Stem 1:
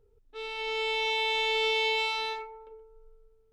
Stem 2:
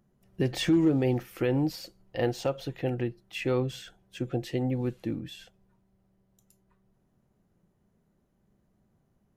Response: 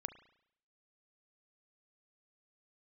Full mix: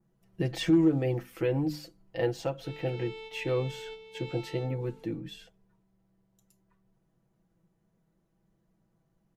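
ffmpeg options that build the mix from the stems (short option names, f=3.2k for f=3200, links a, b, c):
-filter_complex "[0:a]acrossover=split=440[a][b];[b]acompressor=threshold=-39dB:ratio=4[c];[a][c]amix=inputs=2:normalize=0,adelay=2300,volume=-10.5dB,asplit=2[d][e];[e]volume=-4dB[f];[1:a]bandreject=f=50:t=h:w=6,bandreject=f=100:t=h:w=6,bandreject=f=150:t=h:w=6,bandreject=f=200:t=h:w=6,bandreject=f=250:t=h:w=6,bandreject=f=300:t=h:w=6,aecho=1:1:6.1:0.65,adynamicequalizer=threshold=0.00316:dfrequency=4300:dqfactor=0.96:tfrequency=4300:tqfactor=0.96:attack=5:release=100:ratio=0.375:range=2:mode=cutabove:tftype=bell,volume=-3.5dB,asplit=2[g][h];[h]apad=whole_len=256731[i];[d][i]sidechaingate=range=-33dB:threshold=-54dB:ratio=16:detection=peak[j];[2:a]atrim=start_sample=2205[k];[f][k]afir=irnorm=-1:irlink=0[l];[j][g][l]amix=inputs=3:normalize=0,highshelf=f=11k:g=-4.5"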